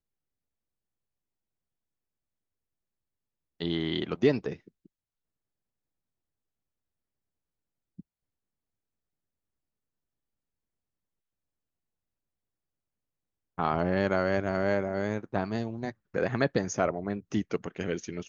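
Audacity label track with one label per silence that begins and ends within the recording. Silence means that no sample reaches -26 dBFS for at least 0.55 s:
4.490000	13.590000	silence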